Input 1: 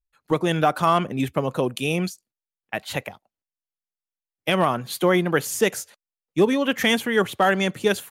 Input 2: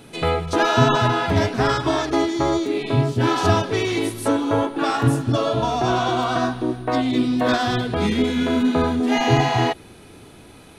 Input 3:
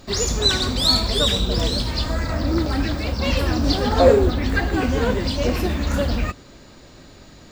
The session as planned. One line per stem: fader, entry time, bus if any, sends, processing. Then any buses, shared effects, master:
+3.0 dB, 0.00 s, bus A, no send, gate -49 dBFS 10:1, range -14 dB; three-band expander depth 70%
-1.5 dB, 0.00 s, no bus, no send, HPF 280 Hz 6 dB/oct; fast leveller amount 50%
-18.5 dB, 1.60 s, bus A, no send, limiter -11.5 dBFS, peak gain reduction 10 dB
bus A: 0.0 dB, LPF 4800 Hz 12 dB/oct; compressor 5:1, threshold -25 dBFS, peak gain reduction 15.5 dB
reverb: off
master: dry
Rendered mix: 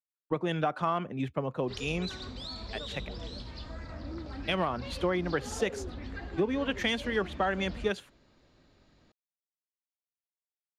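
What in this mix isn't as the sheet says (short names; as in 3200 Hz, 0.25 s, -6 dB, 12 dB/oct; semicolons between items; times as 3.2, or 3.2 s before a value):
stem 1 +3.0 dB -> -6.0 dB; stem 2: muted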